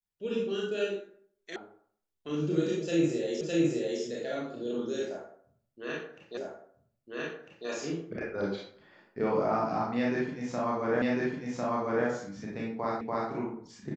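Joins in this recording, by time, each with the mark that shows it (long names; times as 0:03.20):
0:01.56: cut off before it has died away
0:03.41: the same again, the last 0.61 s
0:06.37: the same again, the last 1.3 s
0:11.02: the same again, the last 1.05 s
0:13.01: the same again, the last 0.29 s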